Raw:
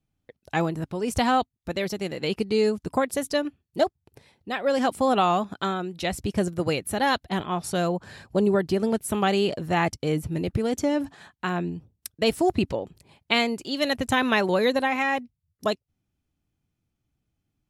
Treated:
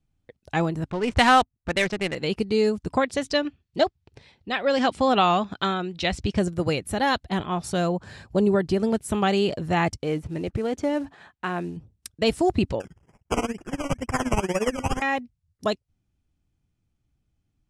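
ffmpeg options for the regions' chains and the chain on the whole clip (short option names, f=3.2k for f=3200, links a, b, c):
-filter_complex "[0:a]asettb=1/sr,asplit=3[a][b][c];[a]atrim=end=0.904[d];[b]atrim=start=0.9:end=2.15,asetpts=PTS-STARTPTS,afade=t=in:d=0.004:c=qsin,afade=t=out:st=1.246:d=0.004:c=qsin,equalizer=f=2k:w=0.54:g=10,adynamicsmooth=sensitivity=5:basefreq=790[e];[c]atrim=start=2.146[f];[d][e]acrossfade=d=0.004:c1=hsin:c2=qsin[g];[g][f]acrossfade=d=0.004:c1=qsin:c2=hsin,asettb=1/sr,asplit=3[h][i][j];[h]atrim=end=2.914[k];[i]atrim=start=2.91:end=6.39,asetpts=PTS-STARTPTS,afade=t=in:d=0.004:c=qsin,afade=t=out:st=3.476:d=0.004:c=qsin,lowpass=4k,highshelf=f=2.5k:g=11[l];[j]atrim=start=6.386[m];[k][l]acrossfade=d=0.004:c1=hsin:c2=qsin[n];[n][m]acrossfade=d=0.004:c1=qsin:c2=hsin,asettb=1/sr,asplit=3[o][p][q];[o]atrim=end=10.034[r];[p]atrim=start=10.03:end=11.77,asetpts=PTS-STARTPTS,afade=t=in:d=0.004:c=qsin,afade=t=out:st=1.736:d=0.004:c=qsin,bass=f=250:g=-7,treble=f=4k:g=-11,acrusher=bits=7:mode=log:mix=0:aa=0.000001[s];[q]atrim=start=11.766[t];[r][s]acrossfade=d=0.004:c1=hsin:c2=qsin[u];[u][t]acrossfade=d=0.004:c1=qsin:c2=hsin,asettb=1/sr,asplit=3[v][w][x];[v]atrim=end=12.804[y];[w]atrim=start=12.8:end=15.02,asetpts=PTS-STARTPTS,afade=t=in:d=0.004:c=qsin,afade=t=out:st=2.216:d=0.004:c=qsin,tremolo=f=17:d=0.87,acrusher=samples=20:mix=1:aa=0.000001:lfo=1:lforange=12:lforate=2.1,asuperstop=centerf=4000:order=20:qfactor=2.7[z];[x]atrim=start=15.016[aa];[y][z]acrossfade=d=0.004:c1=hsin:c2=qsin[ab];[ab][aa]acrossfade=d=0.004:c1=qsin:c2=hsin,lowpass=f=10k:w=0.5412,lowpass=f=10k:w=1.3066,lowshelf=f=86:g=10"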